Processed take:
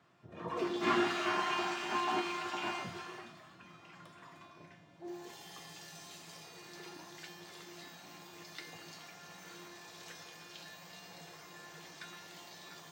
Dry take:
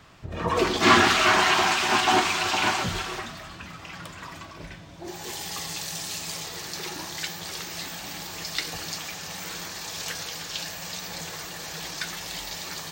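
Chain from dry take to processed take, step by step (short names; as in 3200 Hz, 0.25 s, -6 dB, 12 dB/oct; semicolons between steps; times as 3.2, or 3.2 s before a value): HPF 120 Hz 24 dB/oct; high shelf 2700 Hz -10 dB; resonator 350 Hz, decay 0.96 s, mix 90%; gain +5 dB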